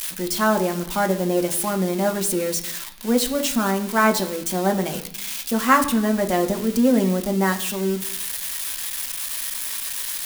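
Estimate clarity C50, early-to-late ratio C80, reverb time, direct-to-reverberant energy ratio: 13.0 dB, 15.0 dB, 0.70 s, 4.0 dB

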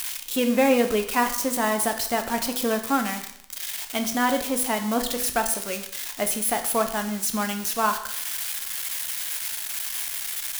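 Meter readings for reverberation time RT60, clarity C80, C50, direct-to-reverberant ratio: 0.70 s, 13.0 dB, 10.0 dB, 6.0 dB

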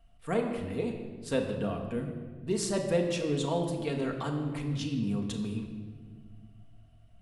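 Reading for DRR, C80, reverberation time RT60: 2.0 dB, 7.5 dB, 1.7 s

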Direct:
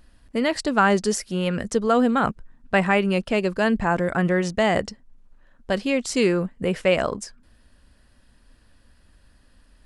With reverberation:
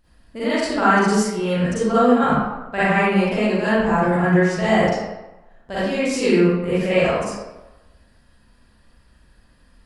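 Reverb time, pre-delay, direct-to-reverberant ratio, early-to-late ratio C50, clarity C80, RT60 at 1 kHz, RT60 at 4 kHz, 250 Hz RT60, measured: 1.0 s, 38 ms, −12.5 dB, −7.5 dB, −1.0 dB, 1.1 s, 0.65 s, 0.95 s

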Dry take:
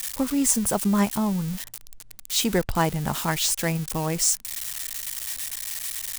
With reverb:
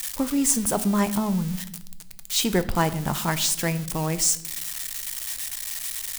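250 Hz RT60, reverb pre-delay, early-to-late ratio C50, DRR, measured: 1.2 s, 3 ms, 16.0 dB, 11.5 dB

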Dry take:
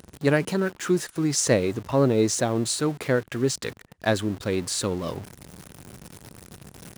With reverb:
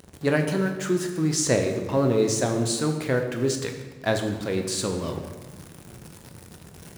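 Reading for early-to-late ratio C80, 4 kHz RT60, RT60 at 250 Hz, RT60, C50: 8.5 dB, 0.95 s, 1.7 s, 1.3 s, 7.0 dB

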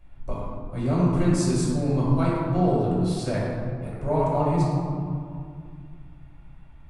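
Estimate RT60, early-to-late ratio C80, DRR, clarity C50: 2.3 s, 0.5 dB, −7.5 dB, −1.5 dB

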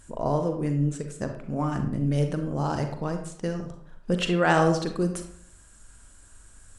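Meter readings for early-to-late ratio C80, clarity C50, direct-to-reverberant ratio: 10.5 dB, 7.0 dB, 5.0 dB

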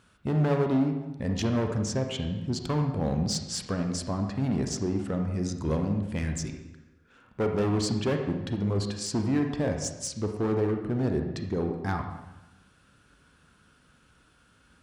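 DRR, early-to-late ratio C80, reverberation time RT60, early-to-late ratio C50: 4.0 dB, 7.5 dB, 1.0 s, 5.5 dB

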